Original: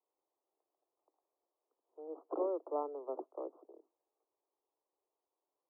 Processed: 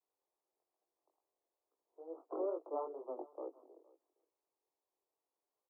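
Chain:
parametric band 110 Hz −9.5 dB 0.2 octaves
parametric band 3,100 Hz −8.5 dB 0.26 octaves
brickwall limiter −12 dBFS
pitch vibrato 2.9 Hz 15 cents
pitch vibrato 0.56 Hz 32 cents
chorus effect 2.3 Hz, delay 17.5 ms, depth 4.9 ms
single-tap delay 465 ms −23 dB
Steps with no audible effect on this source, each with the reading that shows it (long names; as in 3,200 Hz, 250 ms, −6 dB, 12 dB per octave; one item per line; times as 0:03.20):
parametric band 110 Hz: nothing at its input below 240 Hz
parametric band 3,100 Hz: nothing at its input above 1,400 Hz
brickwall limiter −12 dBFS: peak of its input −25.0 dBFS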